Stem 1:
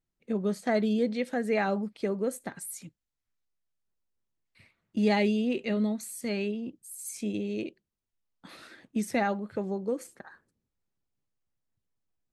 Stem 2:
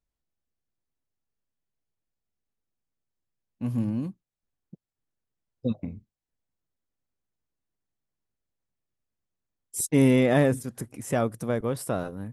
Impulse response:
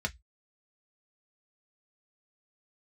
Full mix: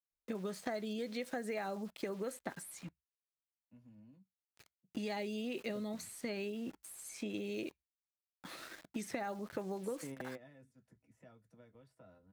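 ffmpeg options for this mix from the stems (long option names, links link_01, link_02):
-filter_complex "[0:a]acompressor=threshold=-28dB:ratio=6,aeval=exprs='val(0)*gte(abs(val(0)),0.00282)':channel_layout=same,volume=1.5dB,asplit=3[link_01][link_02][link_03];[link_02]volume=-21.5dB[link_04];[1:a]acrossover=split=170|2400[link_05][link_06][link_07];[link_05]acompressor=threshold=-40dB:ratio=4[link_08];[link_06]acompressor=threshold=-29dB:ratio=4[link_09];[link_07]acompressor=threshold=-45dB:ratio=4[link_10];[link_08][link_09][link_10]amix=inputs=3:normalize=0,adelay=100,volume=-13.5dB,asplit=2[link_11][link_12];[link_12]volume=-18.5dB[link_13];[link_03]apad=whole_len=548141[link_14];[link_11][link_14]sidechaingate=range=-33dB:threshold=-52dB:ratio=16:detection=peak[link_15];[2:a]atrim=start_sample=2205[link_16];[link_04][link_13]amix=inputs=2:normalize=0[link_17];[link_17][link_16]afir=irnorm=-1:irlink=0[link_18];[link_01][link_15][link_18]amix=inputs=3:normalize=0,lowshelf=frequency=350:gain=-4.5,acrossover=split=1100|4500[link_19][link_20][link_21];[link_19]acompressor=threshold=-38dB:ratio=4[link_22];[link_20]acompressor=threshold=-48dB:ratio=4[link_23];[link_21]acompressor=threshold=-52dB:ratio=4[link_24];[link_22][link_23][link_24]amix=inputs=3:normalize=0"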